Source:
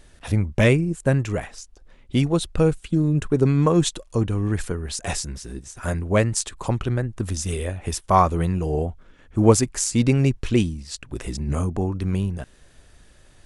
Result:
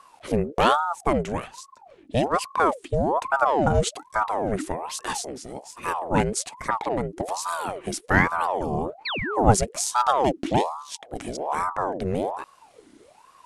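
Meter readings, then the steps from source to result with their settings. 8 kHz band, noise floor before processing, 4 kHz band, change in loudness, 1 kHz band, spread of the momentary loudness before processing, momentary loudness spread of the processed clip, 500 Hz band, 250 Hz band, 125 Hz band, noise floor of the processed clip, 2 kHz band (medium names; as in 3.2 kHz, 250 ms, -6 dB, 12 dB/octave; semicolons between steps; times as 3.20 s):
-3.0 dB, -52 dBFS, -1.0 dB, -2.5 dB, +5.0 dB, 12 LU, 12 LU, -1.5 dB, -6.0 dB, -9.5 dB, -55 dBFS, +3.5 dB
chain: painted sound fall, 9.05–9.38 s, 270–3700 Hz -25 dBFS; ring modulator with a swept carrier 690 Hz, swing 60%, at 1.2 Hz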